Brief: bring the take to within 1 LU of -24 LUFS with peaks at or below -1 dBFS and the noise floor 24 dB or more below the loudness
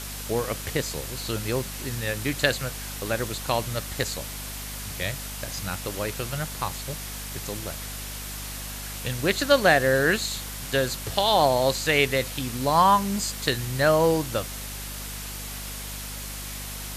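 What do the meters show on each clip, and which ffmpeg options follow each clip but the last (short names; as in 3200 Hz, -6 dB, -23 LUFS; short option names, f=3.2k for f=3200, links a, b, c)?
hum 50 Hz; harmonics up to 250 Hz; hum level -36 dBFS; noise floor -36 dBFS; noise floor target -50 dBFS; loudness -26.0 LUFS; peak -5.0 dBFS; loudness target -24.0 LUFS
-> -af "bandreject=f=50:t=h:w=4,bandreject=f=100:t=h:w=4,bandreject=f=150:t=h:w=4,bandreject=f=200:t=h:w=4,bandreject=f=250:t=h:w=4"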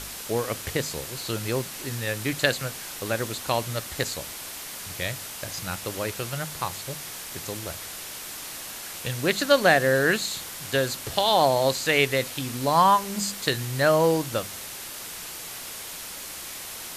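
hum none; noise floor -38 dBFS; noise floor target -50 dBFS
-> -af "afftdn=nr=12:nf=-38"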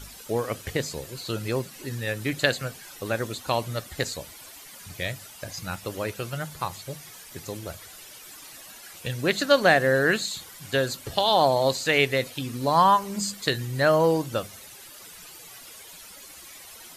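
noise floor -46 dBFS; noise floor target -50 dBFS
-> -af "afftdn=nr=6:nf=-46"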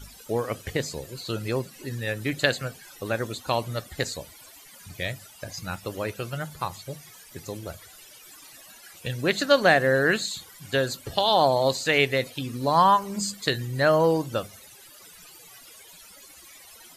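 noise floor -49 dBFS; loudness -25.0 LUFS; peak -4.5 dBFS; loudness target -24.0 LUFS
-> -af "volume=1dB"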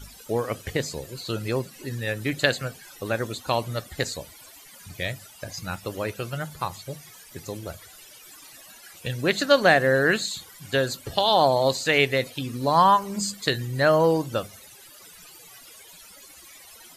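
loudness -24.0 LUFS; peak -3.5 dBFS; noise floor -48 dBFS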